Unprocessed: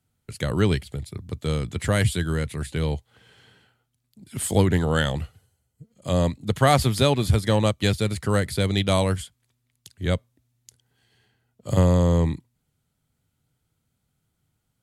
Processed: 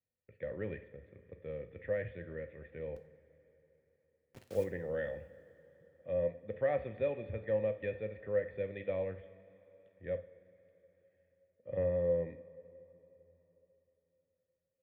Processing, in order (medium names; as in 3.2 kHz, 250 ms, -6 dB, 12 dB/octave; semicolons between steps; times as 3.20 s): cascade formant filter e; 2.96–4.64 s: word length cut 8-bit, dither none; two-slope reverb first 0.43 s, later 3.9 s, from -18 dB, DRR 7 dB; trim -5 dB